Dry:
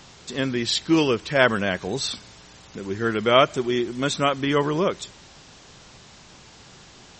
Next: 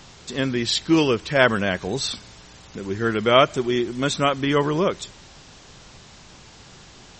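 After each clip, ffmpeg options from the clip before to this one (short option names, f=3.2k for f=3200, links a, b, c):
-af "lowshelf=f=68:g=6.5,volume=1dB"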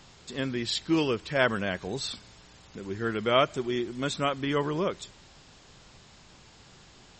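-af "bandreject=f=5.9k:w=14,volume=-7.5dB"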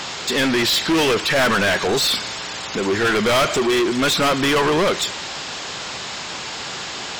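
-filter_complex "[0:a]asplit=2[a][b];[b]highpass=f=720:p=1,volume=36dB,asoftclip=type=tanh:threshold=-8.5dB[c];[a][c]amix=inputs=2:normalize=0,lowpass=f=6.4k:p=1,volume=-6dB,volume=-1.5dB"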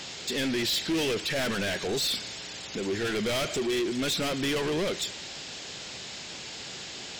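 -af "equalizer=f=1.1k:t=o:w=1.2:g=-10.5,volume=-8.5dB"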